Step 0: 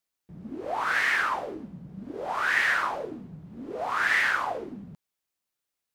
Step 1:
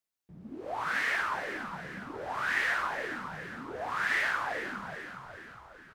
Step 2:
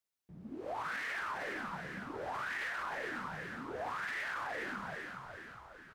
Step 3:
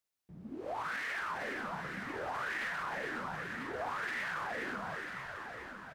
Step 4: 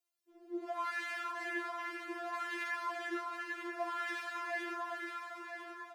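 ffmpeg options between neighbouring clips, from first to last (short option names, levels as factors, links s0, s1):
-filter_complex "[0:a]asplit=7[s0][s1][s2][s3][s4][s5][s6];[s1]adelay=412,afreqshift=-65,volume=0.355[s7];[s2]adelay=824,afreqshift=-130,volume=0.188[s8];[s3]adelay=1236,afreqshift=-195,volume=0.1[s9];[s4]adelay=1648,afreqshift=-260,volume=0.0531[s10];[s5]adelay=2060,afreqshift=-325,volume=0.0279[s11];[s6]adelay=2472,afreqshift=-390,volume=0.0148[s12];[s0][s7][s8][s9][s10][s11][s12]amix=inputs=7:normalize=0,volume=0.531"
-af "alimiter=level_in=1.78:limit=0.0631:level=0:latency=1:release=37,volume=0.562,volume=0.794"
-af "aecho=1:1:993:0.376,volume=1.12"
-af "afreqshift=31,afftfilt=real='re*4*eq(mod(b,16),0)':imag='im*4*eq(mod(b,16),0)':win_size=2048:overlap=0.75,volume=1.19"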